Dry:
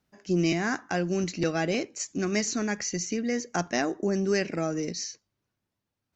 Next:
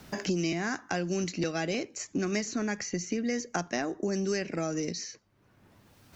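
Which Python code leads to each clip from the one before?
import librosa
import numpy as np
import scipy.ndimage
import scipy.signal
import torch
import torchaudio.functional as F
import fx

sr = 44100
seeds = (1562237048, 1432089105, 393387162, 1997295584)

y = fx.band_squash(x, sr, depth_pct=100)
y = y * 10.0 ** (-4.0 / 20.0)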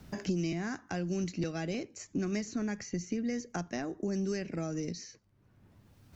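y = fx.dmg_crackle(x, sr, seeds[0], per_s=18.0, level_db=-57.0)
y = fx.low_shelf(y, sr, hz=230.0, db=12.0)
y = y * 10.0 ** (-8.0 / 20.0)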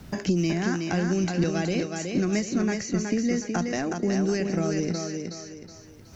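y = fx.echo_thinned(x, sr, ms=370, feedback_pct=38, hz=160.0, wet_db=-4)
y = y * 10.0 ** (8.0 / 20.0)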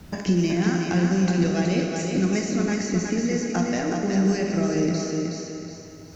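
y = fx.rev_plate(x, sr, seeds[1], rt60_s=2.7, hf_ratio=0.85, predelay_ms=0, drr_db=1.5)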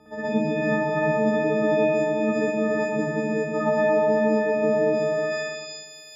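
y = fx.freq_snap(x, sr, grid_st=6)
y = fx.filter_sweep_bandpass(y, sr, from_hz=520.0, to_hz=4600.0, start_s=4.95, end_s=5.68, q=1.3)
y = fx.rev_spring(y, sr, rt60_s=1.7, pass_ms=(56, 60), chirp_ms=35, drr_db=-10.0)
y = y * 10.0 ** (-1.5 / 20.0)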